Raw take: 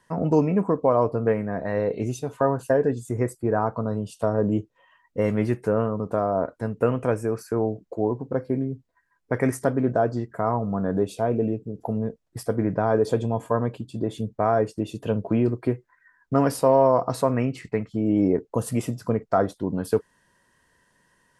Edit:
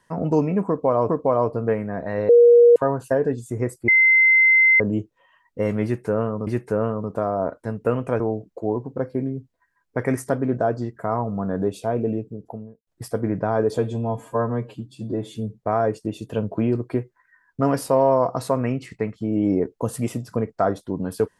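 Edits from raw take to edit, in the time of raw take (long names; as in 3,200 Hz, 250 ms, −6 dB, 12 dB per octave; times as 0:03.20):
0:00.68–0:01.09: repeat, 2 plays
0:01.88–0:02.35: beep over 476 Hz −8 dBFS
0:03.47–0:04.39: beep over 2,070 Hz −11.5 dBFS
0:05.43–0:06.06: repeat, 2 plays
0:07.16–0:07.55: remove
0:11.54–0:12.22: fade out and dull
0:13.13–0:14.37: time-stretch 1.5×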